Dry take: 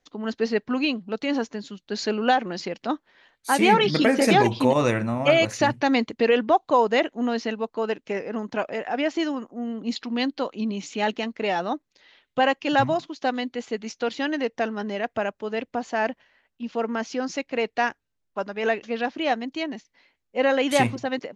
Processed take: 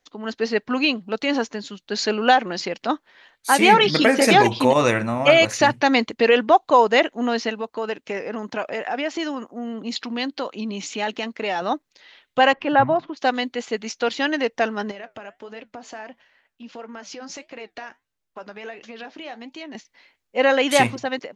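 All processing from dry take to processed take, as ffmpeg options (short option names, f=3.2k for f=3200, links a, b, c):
-filter_complex "[0:a]asettb=1/sr,asplit=3[a][b][c];[a]atrim=end=7.494[d];[b]atrim=start=7.49:end=11.62,asetpts=PTS-STARTPTS,afade=t=in:d=0.004:c=qsin,afade=t=out:st=4.126:d=0.004:c=qsin,highpass=44,acompressor=threshold=-28dB:ratio=2:attack=3.2:release=140:knee=1:detection=peak[e];[c]atrim=start=11.616[f];[d][e]acrossfade=d=0.004:c1=hsin:c2=qsin[g];[g][f]acrossfade=d=0.004:c1=qsin:c2=hsin,asettb=1/sr,asplit=3[h][i][j];[h]atrim=end=12.534[k];[i]atrim=start=12.53:end=13.17,asetpts=PTS-STARTPTS,afade=t=in:d=0.004:c=qsin,afade=t=out:st=0.636:d=0.004:c=qsin,lowpass=1.6k,acompressor=mode=upward:threshold=-28dB:ratio=2.5:attack=3.2:release=140:knee=2.83:detection=peak[l];[j]atrim=start=13.166[m];[k][l]acrossfade=d=0.004:c1=hsin:c2=qsin[n];[n][m]acrossfade=d=0.004:c1=qsin:c2=hsin,asettb=1/sr,asplit=3[o][p][q];[o]atrim=end=14.914[r];[p]atrim=start=14.91:end=19.75,asetpts=PTS-STARTPTS,afade=t=in:d=0.004:c=qsin,afade=t=out:st=4.836:d=0.004:c=qsin,acompressor=threshold=-32dB:ratio=6:attack=3.2:release=140:knee=1:detection=peak,flanger=delay=5.1:depth=5.8:regen=-72:speed=1.5:shape=triangular[s];[q]atrim=start=19.746[t];[r][s]acrossfade=d=0.004:c1=hsin:c2=qsin[u];[u][t]acrossfade=d=0.004:c1=qsin:c2=hsin,lowshelf=f=420:g=-7,dynaudnorm=f=150:g=7:m=3.5dB,volume=3dB"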